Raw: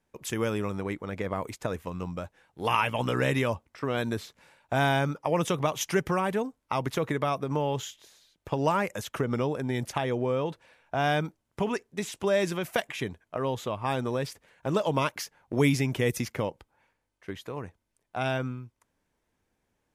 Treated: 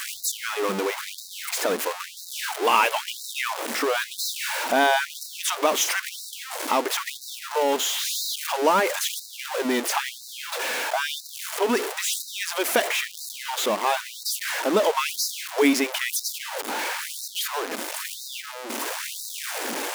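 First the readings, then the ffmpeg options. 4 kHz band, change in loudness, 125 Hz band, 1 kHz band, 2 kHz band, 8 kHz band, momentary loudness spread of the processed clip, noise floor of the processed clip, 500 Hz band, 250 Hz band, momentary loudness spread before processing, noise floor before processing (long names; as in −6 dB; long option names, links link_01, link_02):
+11.5 dB, +4.5 dB, below −15 dB, +5.5 dB, +7.0 dB, +14.5 dB, 11 LU, −41 dBFS, +2.5 dB, 0.0 dB, 11 LU, −79 dBFS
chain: -af "aeval=exprs='val(0)+0.5*0.0531*sgn(val(0))':channel_layout=same,afftfilt=real='re*gte(b*sr/1024,200*pow(3800/200,0.5+0.5*sin(2*PI*1*pts/sr)))':imag='im*gte(b*sr/1024,200*pow(3800/200,0.5+0.5*sin(2*PI*1*pts/sr)))':win_size=1024:overlap=0.75,volume=4dB"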